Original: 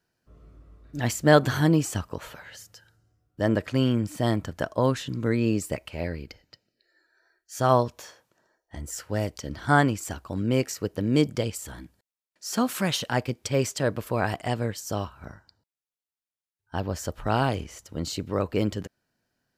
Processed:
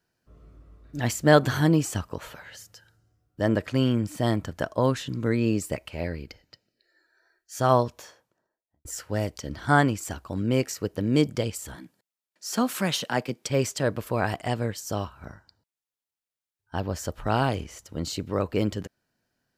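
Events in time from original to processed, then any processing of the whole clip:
7.87–8.85 studio fade out
11.75–13.5 HPF 140 Hz 24 dB/oct

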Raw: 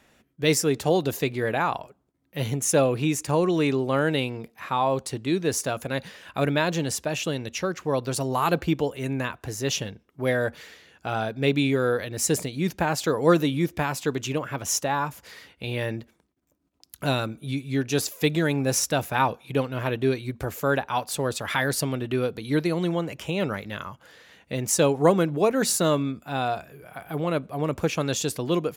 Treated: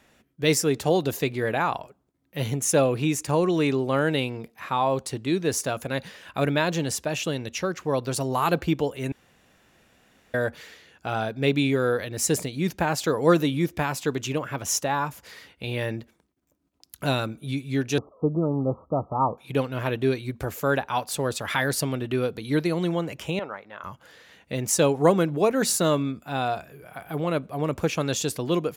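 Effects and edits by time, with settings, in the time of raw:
9.12–10.34 room tone
17.98–19.38 Chebyshev low-pass 1300 Hz, order 10
23.39–23.84 band-pass 940 Hz, Q 1.4

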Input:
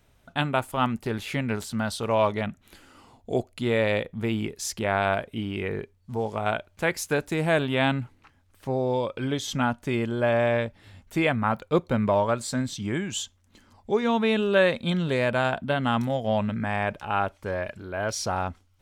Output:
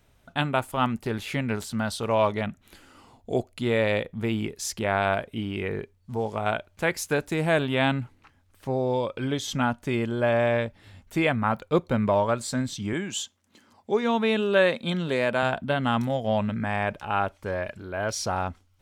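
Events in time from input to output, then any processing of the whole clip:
12.93–15.43 HPF 170 Hz

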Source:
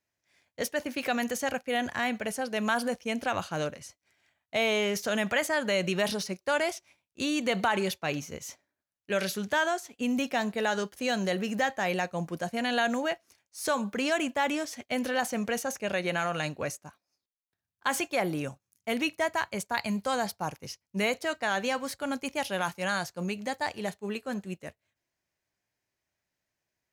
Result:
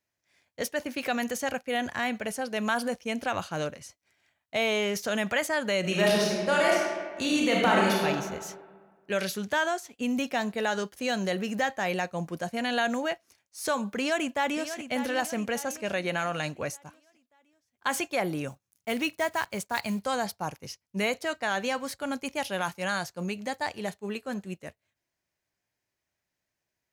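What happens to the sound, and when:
5.8–8.05 reverb throw, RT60 1.6 s, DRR -3.5 dB
13.97–14.83 echo throw 0.59 s, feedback 45%, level -10.5 dB
18.48–20 block floating point 5-bit

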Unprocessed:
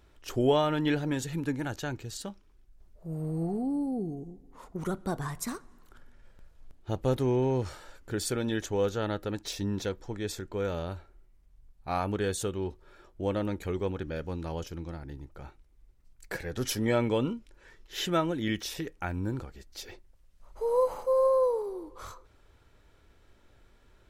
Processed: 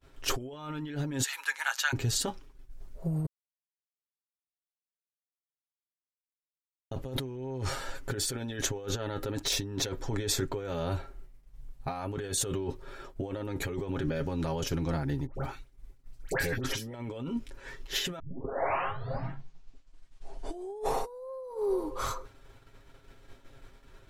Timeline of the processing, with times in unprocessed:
1.23–1.93 inverse Chebyshev high-pass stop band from 230 Hz, stop band 70 dB
3.26–6.91 mute
15.26–16.94 dispersion highs, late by 88 ms, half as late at 1500 Hz
18.19 tape start 3.12 s
whole clip: negative-ratio compressor -38 dBFS, ratio -1; expander -47 dBFS; comb 7.4 ms, depth 61%; gain +3 dB

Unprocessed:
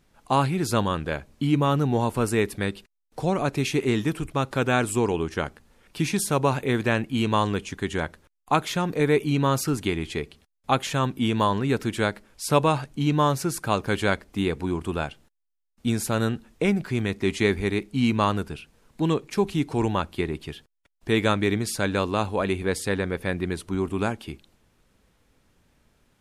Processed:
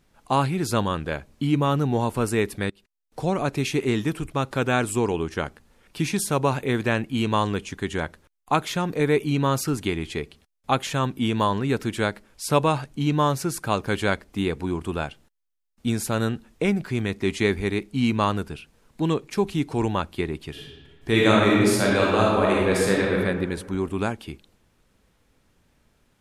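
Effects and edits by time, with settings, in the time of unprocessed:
2.7–3.19 fade in, from -23.5 dB
20.5–23.18 reverb throw, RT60 1.5 s, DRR -4 dB

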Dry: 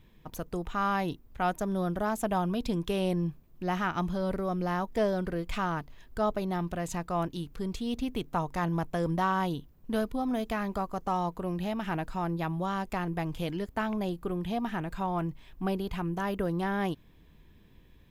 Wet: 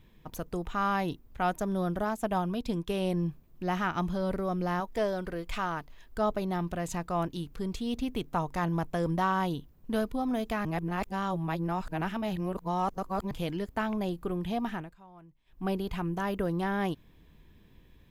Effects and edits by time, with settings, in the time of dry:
2.04–3.14 upward expander, over -44 dBFS
4.8–6.18 bell 130 Hz -6 dB 2.9 oct
10.65–13.31 reverse
14.69–15.7 dip -22 dB, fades 0.25 s

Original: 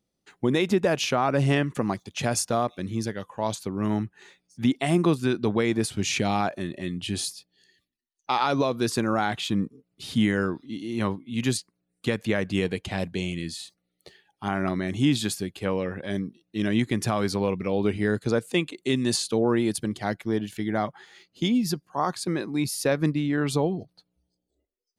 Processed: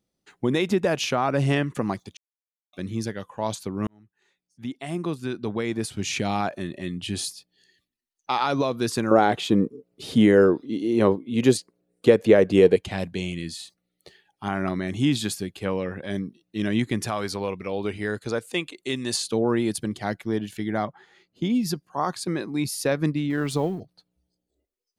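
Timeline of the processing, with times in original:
2.17–2.73 mute
3.87–6.57 fade in
9.11–12.76 bell 460 Hz +14.5 dB 1.4 oct
17.06–19.19 bell 170 Hz -7 dB 2.4 oct
20.85–21.5 high shelf 2100 Hz -11 dB
23.3–23.8 G.711 law mismatch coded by A

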